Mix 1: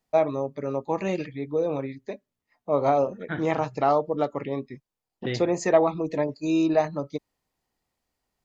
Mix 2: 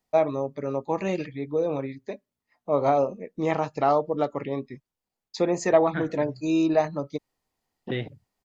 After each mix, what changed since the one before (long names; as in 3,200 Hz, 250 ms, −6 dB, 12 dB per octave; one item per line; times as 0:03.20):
second voice: entry +2.65 s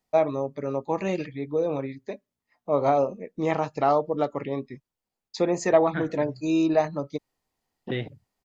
nothing changed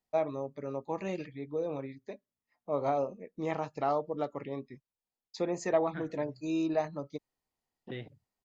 first voice −8.5 dB
second voice −11.5 dB